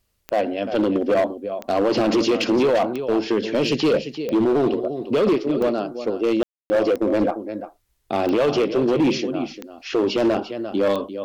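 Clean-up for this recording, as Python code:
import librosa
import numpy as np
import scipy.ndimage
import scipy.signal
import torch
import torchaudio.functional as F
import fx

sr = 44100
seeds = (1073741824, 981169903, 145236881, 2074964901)

y = fx.fix_declip(x, sr, threshold_db=-14.0)
y = fx.fix_declick_ar(y, sr, threshold=10.0)
y = fx.fix_ambience(y, sr, seeds[0], print_start_s=7.6, print_end_s=8.1, start_s=6.43, end_s=6.7)
y = fx.fix_echo_inverse(y, sr, delay_ms=346, level_db=-11.5)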